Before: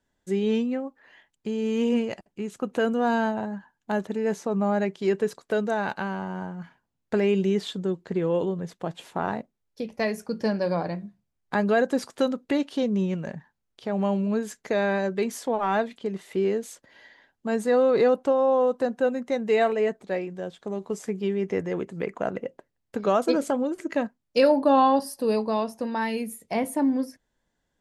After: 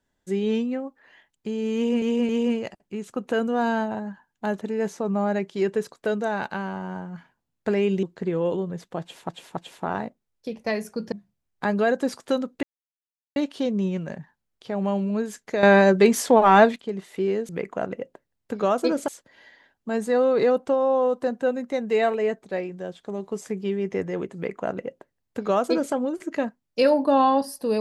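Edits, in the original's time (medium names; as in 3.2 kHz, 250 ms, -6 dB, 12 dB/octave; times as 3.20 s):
1.75–2.02 s: loop, 3 plays
7.49–7.92 s: delete
8.90–9.18 s: loop, 3 plays
10.45–11.02 s: delete
12.53 s: insert silence 0.73 s
14.80–15.93 s: gain +10 dB
21.93–23.52 s: copy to 16.66 s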